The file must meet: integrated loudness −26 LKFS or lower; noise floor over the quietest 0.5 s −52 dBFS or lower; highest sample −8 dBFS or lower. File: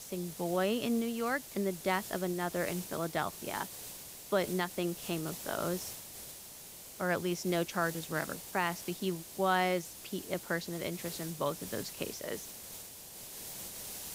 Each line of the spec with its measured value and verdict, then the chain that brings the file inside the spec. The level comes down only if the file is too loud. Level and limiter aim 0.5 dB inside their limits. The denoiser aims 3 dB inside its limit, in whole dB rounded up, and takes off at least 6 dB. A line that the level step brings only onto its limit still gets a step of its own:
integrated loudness −35.5 LKFS: in spec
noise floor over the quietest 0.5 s −50 dBFS: out of spec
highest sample −15.5 dBFS: in spec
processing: broadband denoise 6 dB, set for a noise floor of −50 dBFS

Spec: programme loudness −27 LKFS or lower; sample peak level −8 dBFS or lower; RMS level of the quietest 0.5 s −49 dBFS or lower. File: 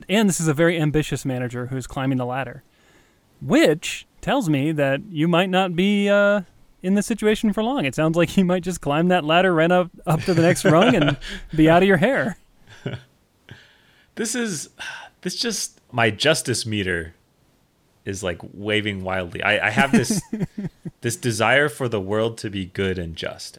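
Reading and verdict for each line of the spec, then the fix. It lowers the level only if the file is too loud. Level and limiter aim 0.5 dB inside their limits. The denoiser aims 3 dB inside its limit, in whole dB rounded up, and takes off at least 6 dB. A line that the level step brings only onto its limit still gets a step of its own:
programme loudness −20.5 LKFS: out of spec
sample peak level −4.5 dBFS: out of spec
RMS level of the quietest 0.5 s −61 dBFS: in spec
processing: level −7 dB

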